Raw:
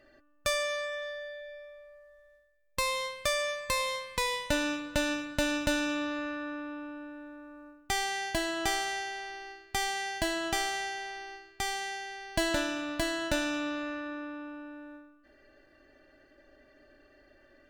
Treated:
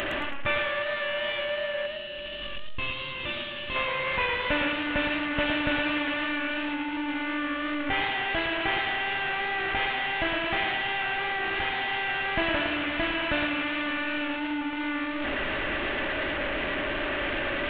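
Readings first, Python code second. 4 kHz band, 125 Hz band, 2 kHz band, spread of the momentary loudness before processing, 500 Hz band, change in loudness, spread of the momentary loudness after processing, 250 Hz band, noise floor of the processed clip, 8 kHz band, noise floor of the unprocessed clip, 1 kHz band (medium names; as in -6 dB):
+5.0 dB, +5.0 dB, +8.5 dB, 15 LU, +4.0 dB, +4.5 dB, 5 LU, +4.5 dB, -35 dBFS, under -25 dB, -62 dBFS, +5.0 dB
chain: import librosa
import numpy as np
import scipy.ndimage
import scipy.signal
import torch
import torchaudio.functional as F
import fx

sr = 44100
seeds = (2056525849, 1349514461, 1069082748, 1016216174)

y = fx.delta_mod(x, sr, bps=16000, step_db=-26.0)
y = fx.vibrato(y, sr, rate_hz=3.4, depth_cents=5.4)
y = fx.high_shelf(y, sr, hz=2300.0, db=9.5)
y = fx.spec_box(y, sr, start_s=1.86, length_s=1.9, low_hz=400.0, high_hz=2500.0, gain_db=-10)
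y = fx.echo_warbled(y, sr, ms=111, feedback_pct=41, rate_hz=2.8, cents=95, wet_db=-7)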